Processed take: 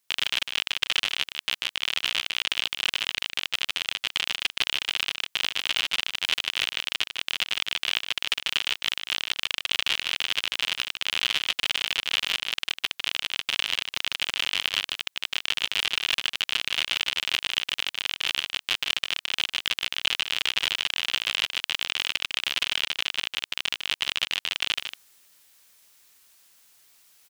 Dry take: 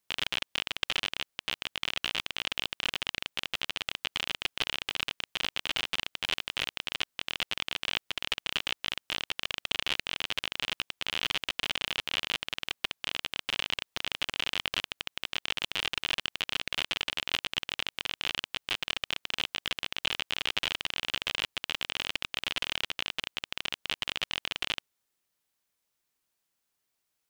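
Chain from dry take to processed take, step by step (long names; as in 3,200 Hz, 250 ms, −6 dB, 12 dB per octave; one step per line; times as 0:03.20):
tilt shelving filter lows −5 dB, about 1,100 Hz
reversed playback
upward compression, threshold −46 dBFS
reversed playback
single-tap delay 152 ms −8 dB
level +2 dB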